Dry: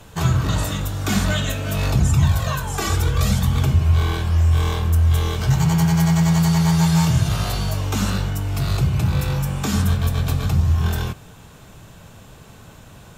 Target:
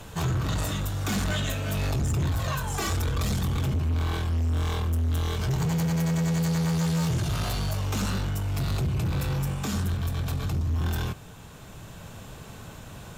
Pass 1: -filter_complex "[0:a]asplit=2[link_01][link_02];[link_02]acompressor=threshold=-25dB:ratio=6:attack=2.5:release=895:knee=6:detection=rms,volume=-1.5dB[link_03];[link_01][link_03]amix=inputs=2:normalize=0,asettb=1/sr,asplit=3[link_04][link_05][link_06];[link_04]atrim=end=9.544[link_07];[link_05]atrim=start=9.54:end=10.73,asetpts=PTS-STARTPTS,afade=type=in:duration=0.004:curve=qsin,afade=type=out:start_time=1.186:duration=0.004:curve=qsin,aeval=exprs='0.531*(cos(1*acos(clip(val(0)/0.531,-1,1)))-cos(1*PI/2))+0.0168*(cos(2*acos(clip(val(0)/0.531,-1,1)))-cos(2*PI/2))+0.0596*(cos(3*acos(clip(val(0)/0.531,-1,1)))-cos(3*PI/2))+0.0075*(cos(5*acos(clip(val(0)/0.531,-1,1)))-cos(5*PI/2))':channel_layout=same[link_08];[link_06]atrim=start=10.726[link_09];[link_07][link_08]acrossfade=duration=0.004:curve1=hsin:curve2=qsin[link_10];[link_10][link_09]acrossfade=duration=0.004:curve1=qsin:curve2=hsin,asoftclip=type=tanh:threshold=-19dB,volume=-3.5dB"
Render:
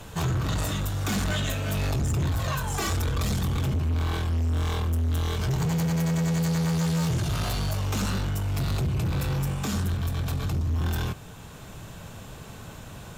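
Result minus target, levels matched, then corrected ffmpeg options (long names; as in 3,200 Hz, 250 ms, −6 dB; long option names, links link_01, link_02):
downward compressor: peak gain reduction −8.5 dB
-filter_complex "[0:a]asplit=2[link_01][link_02];[link_02]acompressor=threshold=-35dB:ratio=6:attack=2.5:release=895:knee=6:detection=rms,volume=-1.5dB[link_03];[link_01][link_03]amix=inputs=2:normalize=0,asettb=1/sr,asplit=3[link_04][link_05][link_06];[link_04]atrim=end=9.544[link_07];[link_05]atrim=start=9.54:end=10.73,asetpts=PTS-STARTPTS,afade=type=in:duration=0.004:curve=qsin,afade=type=out:start_time=1.186:duration=0.004:curve=qsin,aeval=exprs='0.531*(cos(1*acos(clip(val(0)/0.531,-1,1)))-cos(1*PI/2))+0.0168*(cos(2*acos(clip(val(0)/0.531,-1,1)))-cos(2*PI/2))+0.0596*(cos(3*acos(clip(val(0)/0.531,-1,1)))-cos(3*PI/2))+0.0075*(cos(5*acos(clip(val(0)/0.531,-1,1)))-cos(5*PI/2))':channel_layout=same[link_08];[link_06]atrim=start=10.726[link_09];[link_07][link_08]acrossfade=duration=0.004:curve1=hsin:curve2=qsin[link_10];[link_10][link_09]acrossfade=duration=0.004:curve1=qsin:curve2=hsin,asoftclip=type=tanh:threshold=-19dB,volume=-3.5dB"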